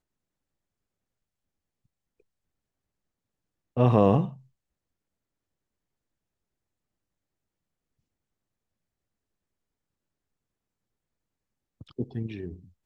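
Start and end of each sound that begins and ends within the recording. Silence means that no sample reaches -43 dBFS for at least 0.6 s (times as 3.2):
3.77–4.36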